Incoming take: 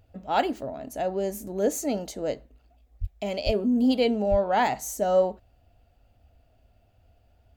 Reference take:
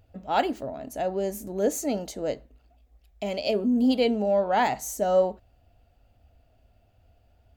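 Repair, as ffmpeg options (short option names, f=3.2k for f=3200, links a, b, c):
-filter_complex "[0:a]asplit=3[a][b][c];[a]afade=t=out:st=3:d=0.02[d];[b]highpass=f=140:w=0.5412,highpass=f=140:w=1.3066,afade=t=in:st=3:d=0.02,afade=t=out:st=3.12:d=0.02[e];[c]afade=t=in:st=3.12:d=0.02[f];[d][e][f]amix=inputs=3:normalize=0,asplit=3[g][h][i];[g]afade=t=out:st=3.45:d=0.02[j];[h]highpass=f=140:w=0.5412,highpass=f=140:w=1.3066,afade=t=in:st=3.45:d=0.02,afade=t=out:st=3.57:d=0.02[k];[i]afade=t=in:st=3.57:d=0.02[l];[j][k][l]amix=inputs=3:normalize=0,asplit=3[m][n][o];[m]afade=t=out:st=4.3:d=0.02[p];[n]highpass=f=140:w=0.5412,highpass=f=140:w=1.3066,afade=t=in:st=4.3:d=0.02,afade=t=out:st=4.42:d=0.02[q];[o]afade=t=in:st=4.42:d=0.02[r];[p][q][r]amix=inputs=3:normalize=0"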